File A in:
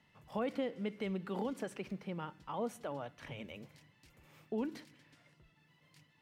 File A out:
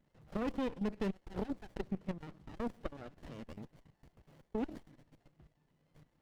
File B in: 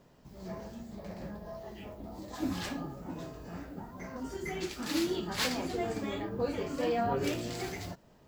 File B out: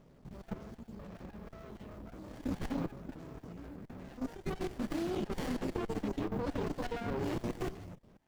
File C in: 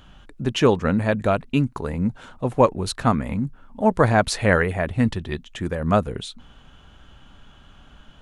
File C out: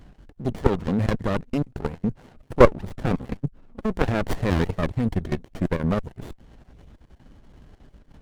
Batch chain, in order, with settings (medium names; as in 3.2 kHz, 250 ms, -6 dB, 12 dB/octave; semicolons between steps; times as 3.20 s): random holes in the spectrogram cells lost 25%; level held to a coarse grid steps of 13 dB; sliding maximum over 33 samples; trim +6 dB